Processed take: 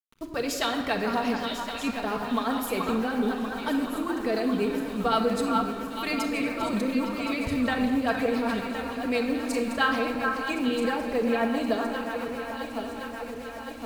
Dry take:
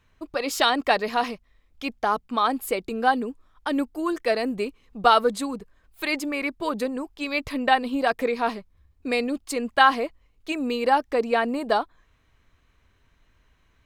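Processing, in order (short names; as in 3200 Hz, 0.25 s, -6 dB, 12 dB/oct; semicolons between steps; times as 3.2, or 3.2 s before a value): regenerating reverse delay 0.534 s, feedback 79%, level -13.5 dB; bell 88 Hz +12 dB 1.9 oct; in parallel at -2 dB: negative-ratio compressor -27 dBFS, ratio -1; on the sum: bit-crush 7-bit; rotary speaker horn 7.5 Hz; 9.33–9.95 doubler 36 ms -6 dB; on a send: delay with a stepping band-pass 0.428 s, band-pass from 1200 Hz, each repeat 1.4 oct, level -3 dB; on the sum: shoebox room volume 3100 m³, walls mixed, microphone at 1.6 m; gain -7.5 dB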